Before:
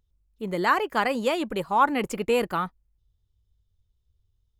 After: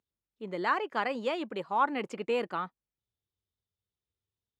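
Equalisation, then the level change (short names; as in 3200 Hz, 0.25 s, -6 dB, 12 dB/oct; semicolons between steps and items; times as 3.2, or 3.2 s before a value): BPF 210–4800 Hz; -6.5 dB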